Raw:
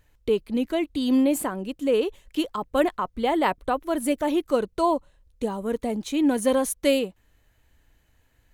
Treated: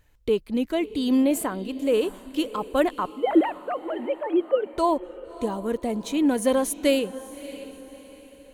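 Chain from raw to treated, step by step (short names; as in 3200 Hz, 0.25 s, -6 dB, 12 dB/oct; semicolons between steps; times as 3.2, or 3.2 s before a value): 3.12–4.74 sine-wave speech; diffused feedback echo 0.62 s, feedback 41%, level -15.5 dB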